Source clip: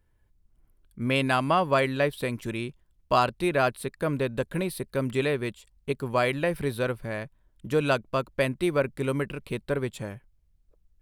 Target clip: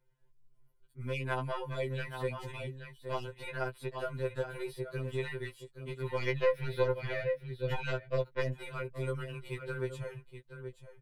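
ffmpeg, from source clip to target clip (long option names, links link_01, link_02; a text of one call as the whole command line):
ffmpeg -i in.wav -filter_complex "[0:a]aecho=1:1:824:0.178,acompressor=threshold=-26dB:ratio=2.5,asettb=1/sr,asplit=3[link_01][link_02][link_03];[link_01]atrim=end=6.184[link_04];[link_02]atrim=start=6.18:end=8.53,asetpts=PTS-STARTPTS,afade=type=in:duration=0.004:curve=qsin,afade=type=out:start_time=2.346:duration=0.004:curve=qsin,equalizer=frequency=125:width_type=o:width=1:gain=8,equalizer=frequency=250:width_type=o:width=1:gain=4,equalizer=frequency=500:width_type=o:width=1:gain=8,equalizer=frequency=1000:width_type=o:width=1:gain=-5,equalizer=frequency=2000:width_type=o:width=1:gain=8,equalizer=frequency=4000:width_type=o:width=1:gain=8,equalizer=frequency=8000:width_type=o:width=1:gain=-10[link_05];[link_03]atrim=start=8.526[link_06];[link_04][link_05]acrossfade=duration=0.004:curve1=hsin:curve2=qsin[link_07];[link_07][link_06]acrossfade=duration=0.004:curve1=qsin:curve2=hsin,aeval=exprs='0.376*(cos(1*acos(clip(val(0)/0.376,-1,1)))-cos(1*PI/2))+0.168*(cos(2*acos(clip(val(0)/0.376,-1,1)))-cos(2*PI/2))':channel_layout=same,acrossover=split=660|2900|5900[link_08][link_09][link_10][link_11];[link_08]acompressor=threshold=-34dB:ratio=4[link_12];[link_09]acompressor=threshold=-31dB:ratio=4[link_13];[link_10]acompressor=threshold=-52dB:ratio=4[link_14];[link_11]acompressor=threshold=-51dB:ratio=4[link_15];[link_12][link_13][link_14][link_15]amix=inputs=4:normalize=0,highshelf=frequency=7300:gain=-6.5,aecho=1:1:5.7:0.75,afftfilt=real='re*2.45*eq(mod(b,6),0)':imag='im*2.45*eq(mod(b,6),0)':win_size=2048:overlap=0.75,volume=-3.5dB" out.wav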